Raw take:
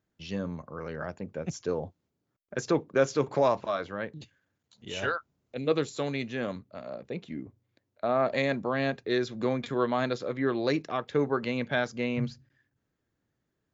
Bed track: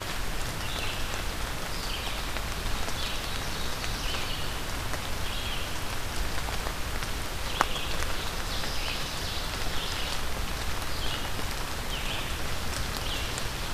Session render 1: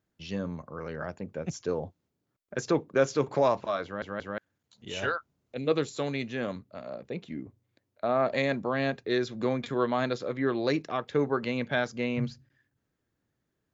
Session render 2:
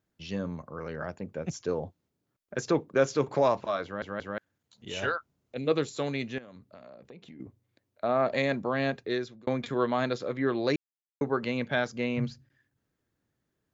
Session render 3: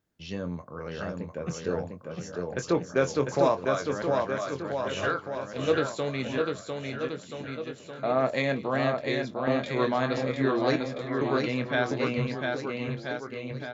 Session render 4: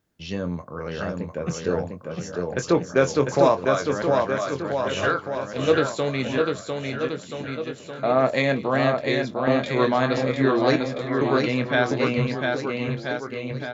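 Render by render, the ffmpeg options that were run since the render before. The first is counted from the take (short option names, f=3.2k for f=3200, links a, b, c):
-filter_complex "[0:a]asplit=4[a][b][c][d];[a]atrim=end=4.022[e];[b]atrim=start=3.838:end=4.022[f];[c]atrim=start=3.838:end=4.022[g];[d]atrim=start=4.378[h];[e][f]acrossfade=d=0.004:c1=hsin:c2=hsin[i];[i][g]acrossfade=d=0.004:c1=hsin:c2=hsin[j];[j][h]acrossfade=d=0.004:c1=hsin:c2=hsin"
-filter_complex "[0:a]asettb=1/sr,asplit=3[a][b][c];[a]atrim=end=6.384[d];[b]atrim=start=6.38:end=7.4,asetpts=PTS-STARTPTS,afade=t=in:d=0.004:c=qsin,afade=t=out:st=1.016:d=0.004:c=qsin,acompressor=threshold=-44dB:ratio=12:attack=3.2:release=140:knee=1:detection=peak[e];[c]atrim=start=7.396[f];[d][e]acrossfade=d=0.004:c1=hsin:c2=qsin[g];[g][f]acrossfade=d=0.004:c1=qsin:c2=hsin,asplit=4[h][i][j][k];[h]atrim=end=9.47,asetpts=PTS-STARTPTS,afade=t=out:st=9.02:d=0.45[l];[i]atrim=start=9.47:end=10.76,asetpts=PTS-STARTPTS,afade=t=in:d=0.004:c=hsin,afade=t=out:st=1.286:d=0.004:c=hsin[m];[j]atrim=start=10.76:end=11.21,asetpts=PTS-STARTPTS,volume=0[n];[k]atrim=start=11.21,asetpts=PTS-STARTPTS,afade=t=in:d=0.004:c=hsin[o];[l][m][n][o]concat=n=4:v=0:a=1"
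-filter_complex "[0:a]asplit=2[a][b];[b]adelay=23,volume=-9dB[c];[a][c]amix=inputs=2:normalize=0,aecho=1:1:700|1330|1897|2407|2867:0.631|0.398|0.251|0.158|0.1"
-af "volume=5.5dB"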